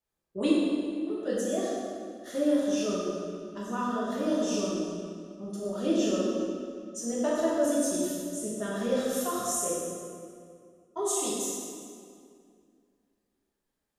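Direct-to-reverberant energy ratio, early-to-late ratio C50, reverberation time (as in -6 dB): -8.0 dB, -2.5 dB, 2.2 s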